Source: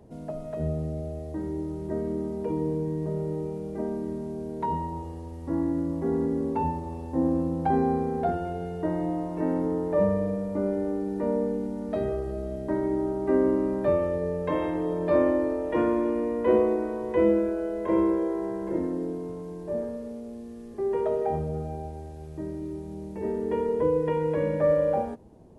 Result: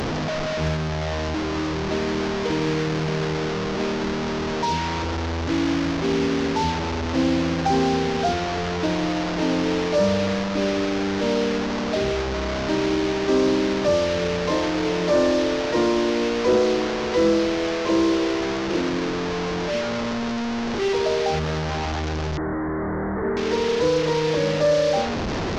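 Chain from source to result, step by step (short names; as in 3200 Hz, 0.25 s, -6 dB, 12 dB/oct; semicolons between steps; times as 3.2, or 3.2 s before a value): delta modulation 32 kbps, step -24.5 dBFS; in parallel at -11 dB: hard clip -24 dBFS, distortion -10 dB; 22.37–23.37 on the sum: steep low-pass 2000 Hz 96 dB/oct; soft clip -13 dBFS, distortion -24 dB; gain +3 dB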